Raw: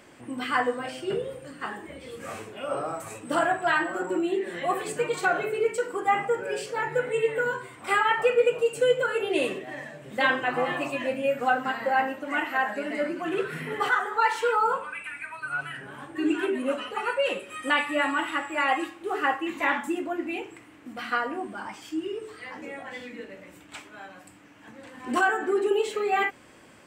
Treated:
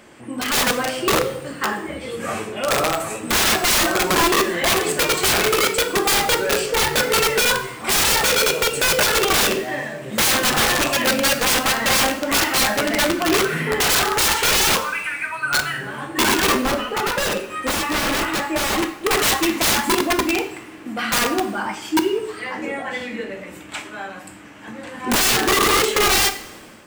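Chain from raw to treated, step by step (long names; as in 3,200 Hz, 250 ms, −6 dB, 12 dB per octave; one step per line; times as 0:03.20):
wrap-around overflow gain 23.5 dB
0:16.52–0:19.03: high-shelf EQ 2,400 Hz −8.5 dB
coupled-rooms reverb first 0.55 s, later 2.1 s, from −17 dB, DRR 8.5 dB
automatic gain control gain up to 6 dB
level +5 dB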